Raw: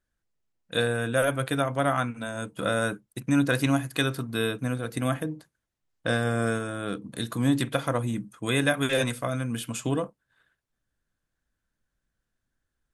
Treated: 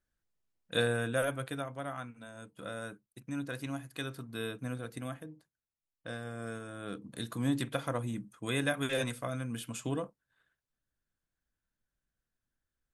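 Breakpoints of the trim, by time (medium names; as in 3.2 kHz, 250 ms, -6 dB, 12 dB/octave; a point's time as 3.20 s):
0.95 s -4 dB
1.84 s -15 dB
3.68 s -15 dB
4.81 s -8.5 dB
5.19 s -15.5 dB
6.37 s -15.5 dB
7.03 s -7.5 dB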